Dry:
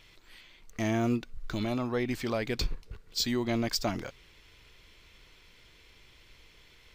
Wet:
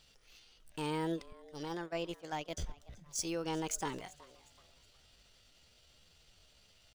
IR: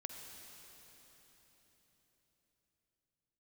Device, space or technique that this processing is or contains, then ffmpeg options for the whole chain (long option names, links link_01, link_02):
chipmunk voice: -filter_complex "[0:a]asettb=1/sr,asplit=3[link_01][link_02][link_03];[link_01]atrim=end=1.344[link_04];[link_02]atrim=start=1.34:end=2.8,asetpts=PTS-STARTPTS,afade=type=in:duration=0.004:curve=qsin,afade=type=out:start_time=1.456:duration=0.004:curve=qsin,agate=range=-21dB:threshold=-30dB:ratio=16:detection=peak[link_05];[link_03]atrim=start=2.796[link_06];[link_04][link_05]acrossfade=duration=0.004:curve1=hsin:curve2=qsin[link_07];[link_07][link_06]acrossfade=duration=0.004:curve1=qsin:curve2=hsin,lowshelf=frequency=270:gain=-2.5,asplit=4[link_08][link_09][link_10][link_11];[link_09]adelay=370,afreqshift=89,volume=-21dB[link_12];[link_10]adelay=740,afreqshift=178,volume=-29.9dB[link_13];[link_11]adelay=1110,afreqshift=267,volume=-38.7dB[link_14];[link_08][link_12][link_13][link_14]amix=inputs=4:normalize=0,asetrate=60591,aresample=44100,atempo=0.727827,volume=-6.5dB"